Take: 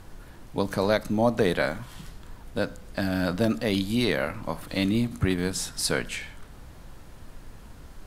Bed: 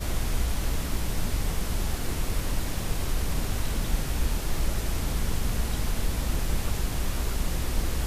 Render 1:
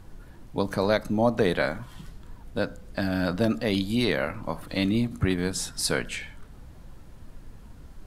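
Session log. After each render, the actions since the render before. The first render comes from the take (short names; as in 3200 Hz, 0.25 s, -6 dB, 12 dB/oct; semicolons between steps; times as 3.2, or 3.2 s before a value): denoiser 6 dB, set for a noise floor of -47 dBFS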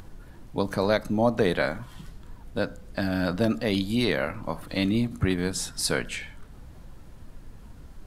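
upward compressor, threshold -41 dBFS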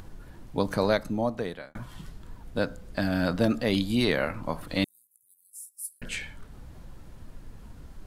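0.82–1.75 fade out; 4.84–6.02 inverse Chebyshev high-pass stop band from 2800 Hz, stop band 70 dB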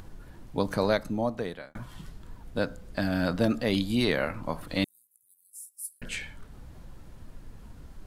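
gain -1 dB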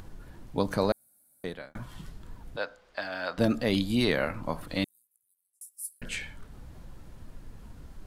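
0.92–1.44 room tone; 2.56–3.38 three-band isolator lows -24 dB, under 510 Hz, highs -18 dB, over 5600 Hz; 4.6–5.61 fade out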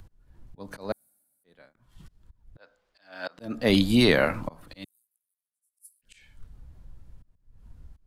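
auto swell 0.312 s; three-band expander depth 70%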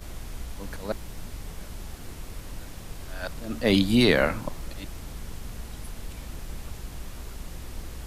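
add bed -10.5 dB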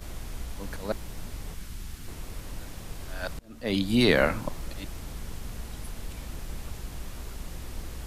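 1.54–2.08 bell 600 Hz -11 dB 1.4 oct; 3.39–4.2 fade in, from -24 dB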